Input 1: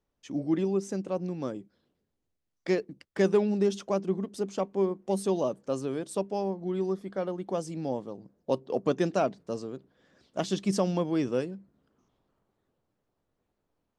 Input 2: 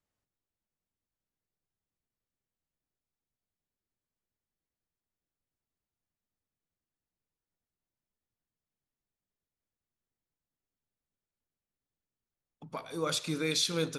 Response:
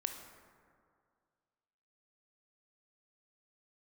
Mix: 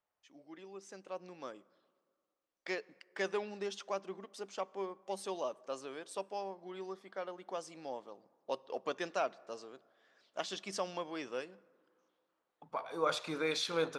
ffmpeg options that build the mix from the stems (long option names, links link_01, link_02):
-filter_complex "[0:a]highpass=frequency=1100:poles=1,highshelf=frequency=9400:gain=-3.5,dynaudnorm=framelen=630:gausssize=3:maxgain=12dB,volume=-12.5dB,asplit=3[link_01][link_02][link_03];[link_02]volume=-15.5dB[link_04];[1:a]equalizer=frequency=790:width_type=o:width=2.5:gain=13.5,volume=-6dB[link_05];[link_03]apad=whole_len=616772[link_06];[link_05][link_06]sidechaincompress=threshold=-55dB:ratio=8:attack=16:release=982[link_07];[2:a]atrim=start_sample=2205[link_08];[link_04][link_08]afir=irnorm=-1:irlink=0[link_09];[link_01][link_07][link_09]amix=inputs=3:normalize=0,lowshelf=frequency=400:gain=-9.5,highshelf=frequency=6300:gain=-11"